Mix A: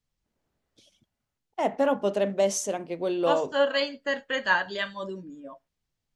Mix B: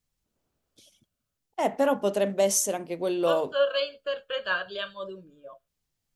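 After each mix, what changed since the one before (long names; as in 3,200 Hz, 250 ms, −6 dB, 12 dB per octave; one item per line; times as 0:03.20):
first voice: remove high-frequency loss of the air 69 metres
second voice: add phaser with its sweep stopped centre 1,300 Hz, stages 8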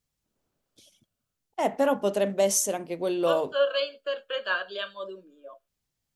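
second voice: add Butterworth high-pass 210 Hz 48 dB per octave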